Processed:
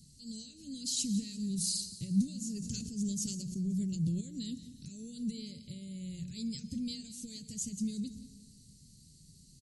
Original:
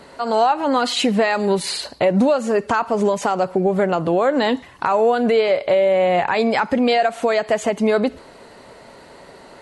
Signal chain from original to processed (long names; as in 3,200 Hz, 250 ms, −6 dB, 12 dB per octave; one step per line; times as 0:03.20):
Chebyshev band-stop filter 160–5,600 Hz, order 3
mains-hum notches 60/120/180 Hz
repeating echo 176 ms, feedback 45%, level −16.5 dB
convolution reverb RT60 1.3 s, pre-delay 108 ms, DRR 17 dB
0:02.46–0:04.21: level that may fall only so fast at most 33 dB per second
level −2.5 dB